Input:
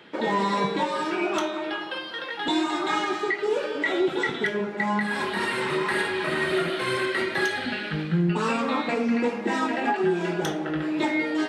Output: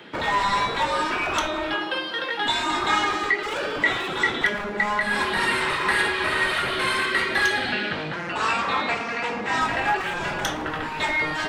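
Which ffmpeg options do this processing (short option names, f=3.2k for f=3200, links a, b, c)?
-filter_complex "[0:a]acrossover=split=730|4800[a][b][c];[a]aeval=exprs='0.0251*(abs(mod(val(0)/0.0251+3,4)-2)-1)':c=same[d];[d][b][c]amix=inputs=3:normalize=0,asettb=1/sr,asplit=3[e][f][g];[e]atrim=end=7.724[h];[f]atrim=start=7.72:end=9.61,asetpts=PTS-STARTPTS,afade=t=in:d=0.004:c=qsin,afade=t=out:st=1.886:d=0.004:c=qsin,highpass=100,lowpass=7.8k[i];[g]atrim=start=9.606[j];[h][i]acrossfade=d=0.004:c1=hsin:c2=qsin[k];[k][j]acrossfade=d=0.004:c1=qsin:c2=hsin,volume=5.5dB"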